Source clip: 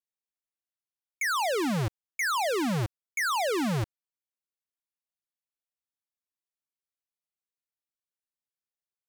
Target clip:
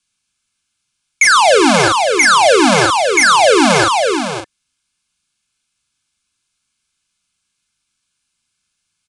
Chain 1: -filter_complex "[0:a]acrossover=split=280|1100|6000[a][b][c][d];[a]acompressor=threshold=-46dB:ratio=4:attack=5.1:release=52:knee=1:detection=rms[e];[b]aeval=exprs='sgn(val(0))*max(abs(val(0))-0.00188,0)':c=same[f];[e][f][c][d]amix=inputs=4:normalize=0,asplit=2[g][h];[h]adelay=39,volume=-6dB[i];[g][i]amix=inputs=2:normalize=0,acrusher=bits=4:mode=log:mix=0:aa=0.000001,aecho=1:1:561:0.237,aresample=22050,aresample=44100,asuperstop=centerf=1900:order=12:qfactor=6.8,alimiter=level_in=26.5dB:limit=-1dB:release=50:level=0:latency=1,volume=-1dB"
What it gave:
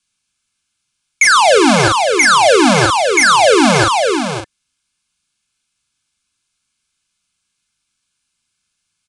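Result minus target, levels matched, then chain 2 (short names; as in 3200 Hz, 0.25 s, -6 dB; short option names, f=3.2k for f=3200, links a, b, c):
compressor: peak gain reduction -8 dB
-filter_complex "[0:a]acrossover=split=280|1100|6000[a][b][c][d];[a]acompressor=threshold=-56.5dB:ratio=4:attack=5.1:release=52:knee=1:detection=rms[e];[b]aeval=exprs='sgn(val(0))*max(abs(val(0))-0.00188,0)':c=same[f];[e][f][c][d]amix=inputs=4:normalize=0,asplit=2[g][h];[h]adelay=39,volume=-6dB[i];[g][i]amix=inputs=2:normalize=0,acrusher=bits=4:mode=log:mix=0:aa=0.000001,aecho=1:1:561:0.237,aresample=22050,aresample=44100,asuperstop=centerf=1900:order=12:qfactor=6.8,alimiter=level_in=26.5dB:limit=-1dB:release=50:level=0:latency=1,volume=-1dB"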